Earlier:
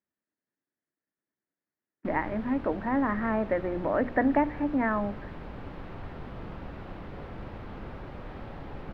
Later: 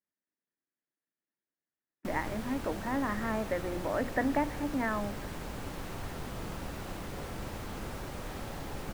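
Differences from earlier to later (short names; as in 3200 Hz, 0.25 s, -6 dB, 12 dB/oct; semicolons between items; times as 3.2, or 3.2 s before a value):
speech -6.5 dB; master: remove air absorption 370 m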